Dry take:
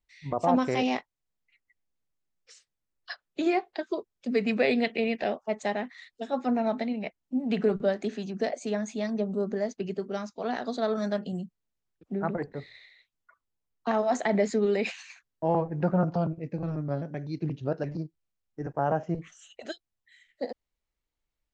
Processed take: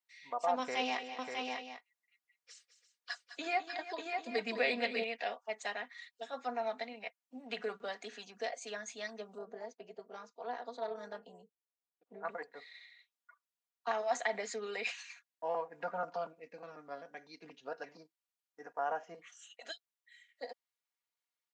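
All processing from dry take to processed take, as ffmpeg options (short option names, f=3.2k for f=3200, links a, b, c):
-filter_complex "[0:a]asettb=1/sr,asplit=3[a][b][c];[a]atrim=end=0.594[d];[b]atrim=start=0.59:end=5.04,asetpts=PTS-STARTPTS,afade=t=in:d=0.004:c=qsin,afade=t=out:st=4.446:d=0.004:c=qsin,equalizer=f=130:t=o:w=1.9:g=11,aecho=1:1:208|336|595|794:0.251|0.168|0.596|0.237,atrim=end_sample=196245[e];[c]atrim=start=5.036[f];[d][e]acrossfade=d=0.004:c1=hsin:c2=qsin[g];[g][f]acrossfade=d=0.004:c1=qsin:c2=hsin,asettb=1/sr,asplit=3[h][i][j];[h]atrim=end=9.384[k];[i]atrim=start=9.38:end=12.25,asetpts=PTS-STARTPTS,afade=t=in:d=0.004:c=qsin,afade=t=out:st=2.866:d=0.004:c=qsin,highpass=f=370:p=1,tiltshelf=f=810:g=10,tremolo=f=250:d=0.571[l];[j]atrim=start=12.246[m];[k][l]acrossfade=d=0.004:c1=hsin:c2=qsin[n];[n][m]acrossfade=d=0.004:c1=qsin:c2=hsin,highpass=840,aecho=1:1:4.2:0.59,volume=-4dB"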